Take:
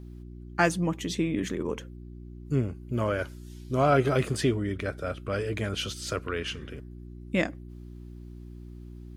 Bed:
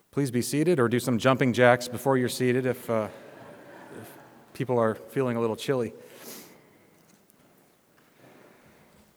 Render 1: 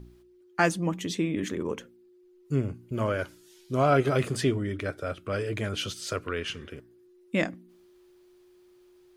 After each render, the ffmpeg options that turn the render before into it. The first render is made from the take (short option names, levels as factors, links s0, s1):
-af "bandreject=f=60:t=h:w=4,bandreject=f=120:t=h:w=4,bandreject=f=180:t=h:w=4,bandreject=f=240:t=h:w=4,bandreject=f=300:t=h:w=4"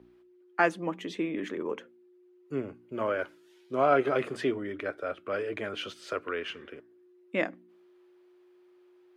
-filter_complex "[0:a]highpass=49,acrossover=split=260 3100:gain=0.112 1 0.158[s0][s1][s2];[s0][s1][s2]amix=inputs=3:normalize=0"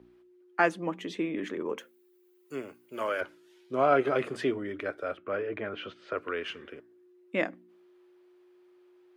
-filter_complex "[0:a]asettb=1/sr,asplit=3[s0][s1][s2];[s0]atrim=end=1.784[s3];[s1]atrim=start=1.78:end=3.21,asetpts=PTS-STARTPTS,afade=t=in:d=0.004:c=qsin,afade=t=out:st=1.426:d=0.004:c=qsin,aemphasis=mode=production:type=riaa[s4];[s2]atrim=start=3.206[s5];[s3][s4]acrossfade=d=0.004:c1=hsin:c2=qsin[s6];[s6][s5]acrossfade=d=0.004:c1=qsin:c2=hsin,asettb=1/sr,asplit=3[s7][s8][s9];[s7]atrim=end=5.174[s10];[s8]atrim=start=5.17:end=6.18,asetpts=PTS-STARTPTS,afade=t=in:d=0.004:c=qsin,afade=t=out:st=1.006:d=0.004:c=qsin,lowpass=2400[s11];[s9]atrim=start=6.176[s12];[s10][s11]acrossfade=d=0.004:c1=hsin:c2=qsin[s13];[s13][s12]acrossfade=d=0.004:c1=qsin:c2=hsin"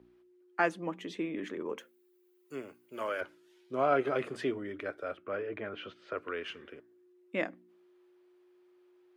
-af "volume=0.631"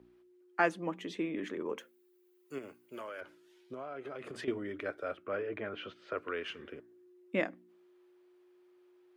-filter_complex "[0:a]asettb=1/sr,asplit=3[s0][s1][s2];[s0]atrim=end=2.584[s3];[s1]atrim=start=2.58:end=4.48,asetpts=PTS-STARTPTS,afade=t=in:d=0.004:c=qsin,afade=t=out:st=1.896:d=0.004:c=qsin,acompressor=threshold=0.0112:ratio=10:attack=3.2:release=140:knee=1:detection=peak[s4];[s2]atrim=start=4.476[s5];[s3][s4]acrossfade=d=0.004:c1=hsin:c2=qsin[s6];[s6][s5]acrossfade=d=0.004:c1=qsin:c2=hsin,asettb=1/sr,asplit=3[s7][s8][s9];[s7]atrim=end=6.594[s10];[s8]atrim=start=6.59:end=7.4,asetpts=PTS-STARTPTS,afade=t=in:d=0.004:c=qsin,afade=t=out:st=0.806:d=0.004:c=qsin,lowshelf=f=380:g=5.5[s11];[s9]atrim=start=7.396[s12];[s10][s11]acrossfade=d=0.004:c1=hsin:c2=qsin[s13];[s13][s12]acrossfade=d=0.004:c1=qsin:c2=hsin"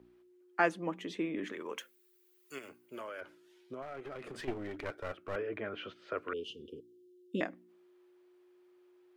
-filter_complex "[0:a]asettb=1/sr,asplit=3[s0][s1][s2];[s0]atrim=end=1.524[s3];[s1]atrim=start=1.52:end=2.69,asetpts=PTS-STARTPTS,afade=t=in:d=0.004:c=qsin,afade=t=out:st=1.166:d=0.004:c=qsin,tiltshelf=f=970:g=-8[s4];[s2]atrim=start=2.686[s5];[s3][s4]acrossfade=d=0.004:c1=hsin:c2=qsin[s6];[s6][s5]acrossfade=d=0.004:c1=qsin:c2=hsin,asettb=1/sr,asplit=3[s7][s8][s9];[s7]atrim=end=3.824[s10];[s8]atrim=start=3.82:end=5.36,asetpts=PTS-STARTPTS,afade=t=in:d=0.004:c=qsin,afade=t=out:st=1.536:d=0.004:c=qsin,aeval=exprs='clip(val(0),-1,0.00668)':c=same[s11];[s9]atrim=start=5.356[s12];[s10][s11]acrossfade=d=0.004:c1=hsin:c2=qsin[s13];[s13][s12]acrossfade=d=0.004:c1=qsin:c2=hsin,asettb=1/sr,asplit=3[s14][s15][s16];[s14]atrim=end=6.334[s17];[s15]atrim=start=6.33:end=7.41,asetpts=PTS-STARTPTS,afade=t=in:d=0.004:c=qsin,afade=t=out:st=1.076:d=0.004:c=qsin,asuperstop=centerf=1200:order=20:qfactor=0.51[s18];[s16]atrim=start=7.406[s19];[s17][s18]acrossfade=d=0.004:c1=hsin:c2=qsin[s20];[s20][s19]acrossfade=d=0.004:c1=qsin:c2=hsin"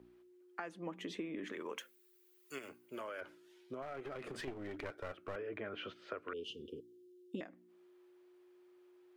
-af "alimiter=level_in=1.19:limit=0.0631:level=0:latency=1:release=394,volume=0.841,acompressor=threshold=0.0112:ratio=6"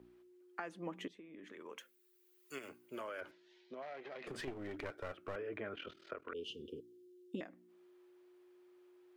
-filter_complex "[0:a]asettb=1/sr,asplit=3[s0][s1][s2];[s0]atrim=end=3.314[s3];[s1]atrim=start=3.31:end=4.27,asetpts=PTS-STARTPTS,afade=t=in:d=0.004:c=qsin,afade=t=out:st=0.956:d=0.004:c=qsin,highpass=f=200:w=0.5412,highpass=f=200:w=1.3066,equalizer=f=290:t=q:w=4:g=-9,equalizer=f=420:t=q:w=4:g=-5,equalizer=f=1300:t=q:w=4:g=-9,equalizer=f=1900:t=q:w=4:g=4,equalizer=f=4100:t=q:w=4:g=4,lowpass=f=5700:w=0.5412,lowpass=f=5700:w=1.3066[s4];[s2]atrim=start=4.266[s5];[s3][s4]acrossfade=d=0.004:c1=hsin:c2=qsin[s6];[s6][s5]acrossfade=d=0.004:c1=qsin:c2=hsin,asettb=1/sr,asplit=3[s7][s8][s9];[s7]atrim=end=5.744[s10];[s8]atrim=start=5.74:end=6.35,asetpts=PTS-STARTPTS,afade=t=in:d=0.004:c=qsin,afade=t=out:st=0.606:d=0.004:c=qsin,aeval=exprs='val(0)*sin(2*PI*20*n/s)':c=same[s11];[s9]atrim=start=6.346[s12];[s10][s11]acrossfade=d=0.004:c1=hsin:c2=qsin[s13];[s13][s12]acrossfade=d=0.004:c1=qsin:c2=hsin,asplit=2[s14][s15];[s14]atrim=end=1.08,asetpts=PTS-STARTPTS,afade=t=out:st=1.076:d=0.004:c=hsin:silence=0.125893[s16];[s15]atrim=start=1.08,asetpts=PTS-STARTPTS,afade=t=in:d=1.62:silence=0.125893[s17];[s16][s17]concat=n=2:v=0:a=1"